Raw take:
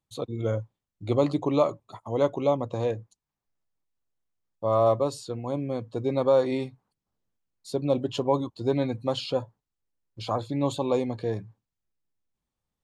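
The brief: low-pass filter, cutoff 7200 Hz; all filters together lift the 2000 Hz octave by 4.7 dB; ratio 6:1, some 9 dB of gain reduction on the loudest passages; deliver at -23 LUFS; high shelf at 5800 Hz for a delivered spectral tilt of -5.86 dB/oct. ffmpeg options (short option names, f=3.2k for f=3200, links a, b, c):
-af "lowpass=7.2k,equalizer=f=2k:t=o:g=7,highshelf=f=5.8k:g=-7.5,acompressor=threshold=-26dB:ratio=6,volume=9.5dB"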